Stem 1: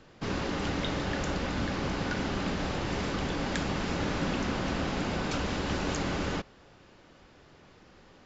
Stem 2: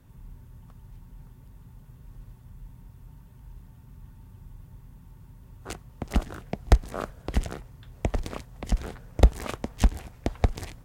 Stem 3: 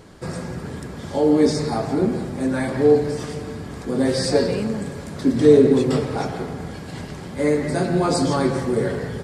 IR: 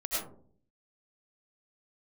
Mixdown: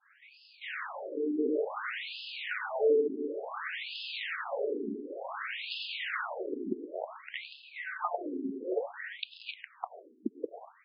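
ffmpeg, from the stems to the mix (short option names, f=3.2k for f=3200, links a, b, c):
-filter_complex "[0:a]highpass=f=650:p=1,asoftclip=type=tanh:threshold=-27dB,adelay=400,volume=-4dB,asplit=2[a][b];[b]volume=-4dB[c];[1:a]volume=-2.5dB,asplit=2[d][e];[e]volume=-18dB[f];[2:a]acompressor=threshold=-22dB:ratio=2,asplit=2[g][h];[h]afreqshift=-0.66[i];[g][i]amix=inputs=2:normalize=1,volume=-7dB,asplit=2[j][k];[k]volume=-5dB[l];[3:a]atrim=start_sample=2205[m];[c][f][l]amix=inputs=3:normalize=0[n];[n][m]afir=irnorm=-1:irlink=0[o];[a][d][j][o]amix=inputs=4:normalize=0,adynamicequalizer=threshold=0.00355:dfrequency=2100:dqfactor=0.96:tfrequency=2100:tqfactor=0.96:attack=5:release=100:ratio=0.375:range=3:mode=boostabove:tftype=bell,afftfilt=real='re*between(b*sr/1024,300*pow(3700/300,0.5+0.5*sin(2*PI*0.56*pts/sr))/1.41,300*pow(3700/300,0.5+0.5*sin(2*PI*0.56*pts/sr))*1.41)':imag='im*between(b*sr/1024,300*pow(3700/300,0.5+0.5*sin(2*PI*0.56*pts/sr))/1.41,300*pow(3700/300,0.5+0.5*sin(2*PI*0.56*pts/sr))*1.41)':win_size=1024:overlap=0.75"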